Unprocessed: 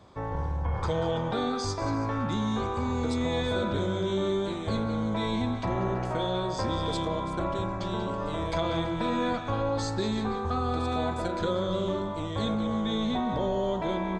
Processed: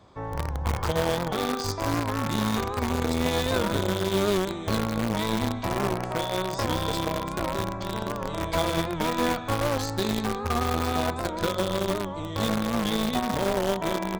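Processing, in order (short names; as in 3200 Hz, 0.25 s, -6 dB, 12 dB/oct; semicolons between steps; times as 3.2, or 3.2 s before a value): notches 60/120/180/240/300/360/420/480/540/600 Hz; in parallel at -4 dB: bit-crush 4-bit; on the sum: record warp 78 rpm, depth 100 cents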